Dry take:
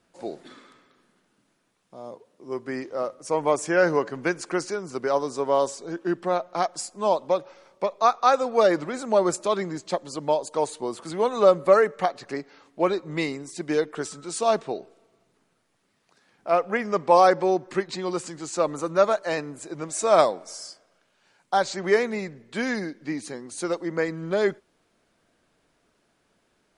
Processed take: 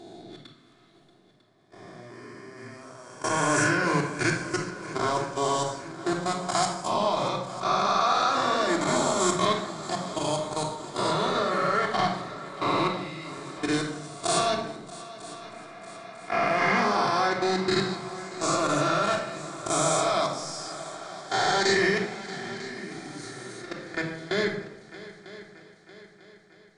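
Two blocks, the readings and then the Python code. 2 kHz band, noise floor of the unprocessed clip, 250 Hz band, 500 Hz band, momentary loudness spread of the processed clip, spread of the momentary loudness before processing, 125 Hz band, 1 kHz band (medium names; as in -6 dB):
+3.0 dB, -69 dBFS, -0.5 dB, -6.0 dB, 20 LU, 15 LU, +4.0 dB, -0.5 dB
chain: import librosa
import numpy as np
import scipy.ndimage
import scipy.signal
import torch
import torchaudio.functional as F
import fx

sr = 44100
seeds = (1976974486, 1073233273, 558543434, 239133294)

y = fx.spec_swells(x, sr, rise_s=2.57)
y = fx.high_shelf(y, sr, hz=5500.0, db=-6.0)
y = fx.level_steps(y, sr, step_db=21)
y = fx.graphic_eq(y, sr, hz=(125, 500, 4000, 8000), db=(7, -9, 7, 5))
y = fx.echo_heads(y, sr, ms=316, heads='second and third', feedback_pct=54, wet_db=-17.5)
y = fx.room_shoebox(y, sr, seeds[0], volume_m3=2100.0, walls='furnished', distance_m=3.2)
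y = y * librosa.db_to_amplitude(-3.0)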